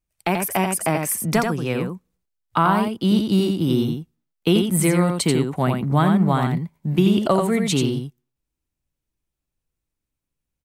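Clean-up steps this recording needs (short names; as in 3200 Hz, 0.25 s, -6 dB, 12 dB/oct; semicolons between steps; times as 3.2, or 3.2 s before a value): inverse comb 86 ms -5 dB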